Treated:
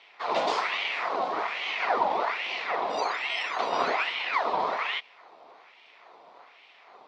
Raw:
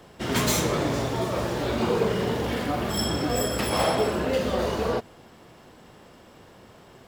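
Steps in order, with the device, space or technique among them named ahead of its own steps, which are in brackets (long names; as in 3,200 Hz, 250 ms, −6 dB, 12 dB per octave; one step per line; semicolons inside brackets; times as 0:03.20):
voice changer toy (ring modulator whose carrier an LFO sweeps 1,500 Hz, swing 75%, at 1.2 Hz; loudspeaker in its box 430–4,400 Hz, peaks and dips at 440 Hz +4 dB, 710 Hz +7 dB, 1,000 Hz +5 dB, 1,600 Hz −8 dB, 2,900 Hz −4 dB)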